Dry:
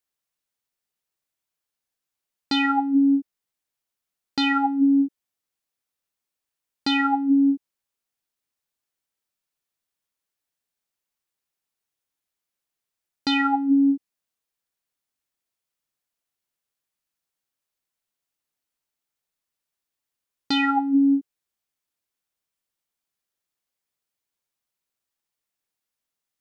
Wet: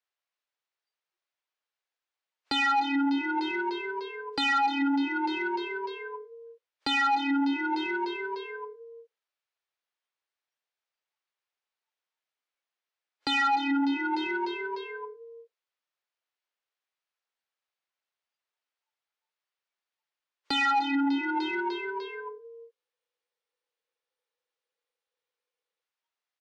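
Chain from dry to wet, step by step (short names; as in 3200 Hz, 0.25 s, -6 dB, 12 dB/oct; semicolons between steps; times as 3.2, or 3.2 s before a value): HPF 340 Hz 24 dB/oct; on a send: frequency-shifting echo 0.299 s, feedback 54%, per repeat +37 Hz, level -16 dB; on the sum: compressor 2.5:1, threshold -39 dBFS, peak gain reduction 13.5 dB; spectral noise reduction 19 dB; overdrive pedal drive 27 dB, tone 5200 Hz, clips at -16 dBFS; air absorption 120 m; spectral freeze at 22.77, 3.04 s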